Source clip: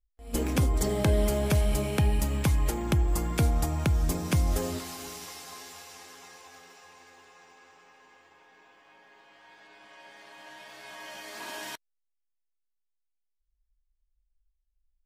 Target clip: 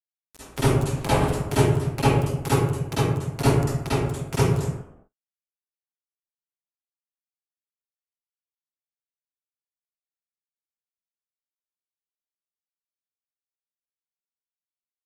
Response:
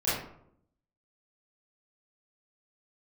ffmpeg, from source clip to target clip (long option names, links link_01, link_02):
-filter_complex "[0:a]aecho=1:1:7.3:0.42,acrusher=bits=2:mix=0:aa=0.5[link_01];[1:a]atrim=start_sample=2205,afade=type=out:start_time=0.31:duration=0.01,atrim=end_sample=14112,asetrate=24696,aresample=44100[link_02];[link_01][link_02]afir=irnorm=-1:irlink=0,volume=-5.5dB"